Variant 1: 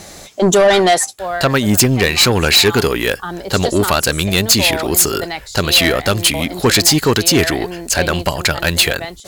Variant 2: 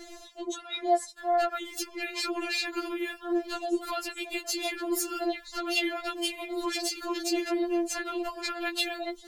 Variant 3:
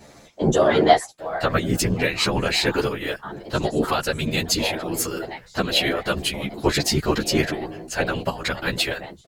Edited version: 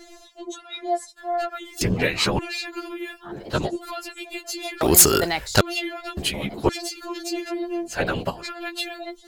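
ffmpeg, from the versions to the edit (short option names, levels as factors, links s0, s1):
-filter_complex "[2:a]asplit=4[s0][s1][s2][s3];[1:a]asplit=6[s4][s5][s6][s7][s8][s9];[s4]atrim=end=1.812[s10];[s0]atrim=start=1.808:end=2.392[s11];[s5]atrim=start=2.388:end=3.37[s12];[s1]atrim=start=3.21:end=3.77[s13];[s6]atrim=start=3.61:end=4.812[s14];[0:a]atrim=start=4.808:end=5.612[s15];[s7]atrim=start=5.608:end=6.172[s16];[s2]atrim=start=6.168:end=6.692[s17];[s8]atrim=start=6.688:end=8.04[s18];[s3]atrim=start=7.8:end=8.48[s19];[s9]atrim=start=8.24[s20];[s10][s11]acrossfade=d=0.004:c1=hsin:c2=hsin[s21];[s21][s12]acrossfade=d=0.004:c1=hsin:c2=hsin[s22];[s22][s13]acrossfade=d=0.16:c1=tri:c2=tri[s23];[s23][s14]acrossfade=d=0.16:c1=tri:c2=tri[s24];[s24][s15]acrossfade=d=0.004:c1=hsin:c2=hsin[s25];[s25][s16]acrossfade=d=0.004:c1=hsin:c2=hsin[s26];[s26][s17]acrossfade=d=0.004:c1=hsin:c2=hsin[s27];[s27][s18]acrossfade=d=0.004:c1=hsin:c2=hsin[s28];[s28][s19]acrossfade=d=0.24:c1=tri:c2=tri[s29];[s29][s20]acrossfade=d=0.24:c1=tri:c2=tri"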